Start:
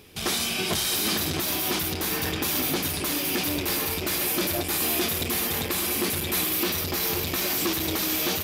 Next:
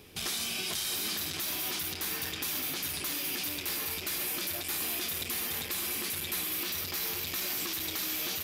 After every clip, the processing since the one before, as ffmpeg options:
-filter_complex "[0:a]acrossover=split=1200|3200[a][b][c];[a]acompressor=threshold=-42dB:ratio=4[d];[b]acompressor=threshold=-39dB:ratio=4[e];[c]acompressor=threshold=-30dB:ratio=4[f];[d][e][f]amix=inputs=3:normalize=0,volume=-2.5dB"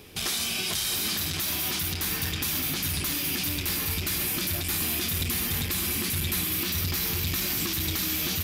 -af "asubboost=boost=5.5:cutoff=210,volume=5dB"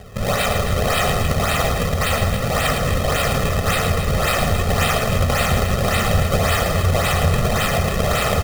-filter_complex "[0:a]acrusher=samples=34:mix=1:aa=0.000001:lfo=1:lforange=54.4:lforate=1.8,aecho=1:1:1.6:0.87,asplit=2[a][b];[b]aecho=0:1:110.8|271.1:0.501|0.316[c];[a][c]amix=inputs=2:normalize=0,volume=6.5dB"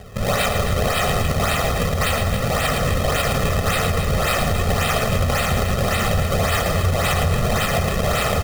-af "alimiter=limit=-10.5dB:level=0:latency=1:release=48"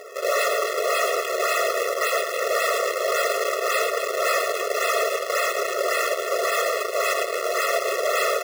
-af "asoftclip=type=hard:threshold=-22dB,equalizer=f=16k:w=0.5:g=-2.5,afftfilt=real='re*eq(mod(floor(b*sr/1024/360),2),1)':imag='im*eq(mod(floor(b*sr/1024/360),2),1)':win_size=1024:overlap=0.75,volume=5.5dB"

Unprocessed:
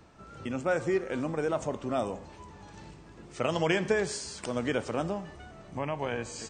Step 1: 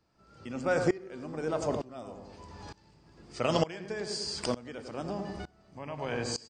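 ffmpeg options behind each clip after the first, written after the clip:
-filter_complex "[0:a]equalizer=f=4.8k:t=o:w=0.23:g=13.5,asplit=2[a][b];[b]adelay=99,lowpass=f=980:p=1,volume=-6.5dB,asplit=2[c][d];[d]adelay=99,lowpass=f=980:p=1,volume=0.51,asplit=2[e][f];[f]adelay=99,lowpass=f=980:p=1,volume=0.51,asplit=2[g][h];[h]adelay=99,lowpass=f=980:p=1,volume=0.51,asplit=2[i][j];[j]adelay=99,lowpass=f=980:p=1,volume=0.51,asplit=2[k][l];[l]adelay=99,lowpass=f=980:p=1,volume=0.51[m];[c][e][g][i][k][m]amix=inputs=6:normalize=0[n];[a][n]amix=inputs=2:normalize=0,aeval=exprs='val(0)*pow(10,-23*if(lt(mod(-1.1*n/s,1),2*abs(-1.1)/1000),1-mod(-1.1*n/s,1)/(2*abs(-1.1)/1000),(mod(-1.1*n/s,1)-2*abs(-1.1)/1000)/(1-2*abs(-1.1)/1000))/20)':c=same,volume=4.5dB"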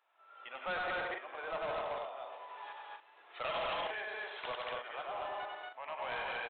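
-af "highpass=f=690:w=0.5412,highpass=f=690:w=1.3066,aecho=1:1:96.21|166.2|233.2|274.1:0.562|0.447|0.794|0.398,aresample=8000,asoftclip=type=tanh:threshold=-36dB,aresample=44100,volume=2.5dB"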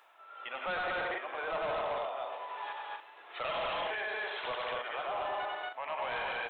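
-af "areverse,acompressor=mode=upward:threshold=-53dB:ratio=2.5,areverse,alimiter=level_in=12.5dB:limit=-24dB:level=0:latency=1:release=12,volume=-12.5dB,volume=7dB"

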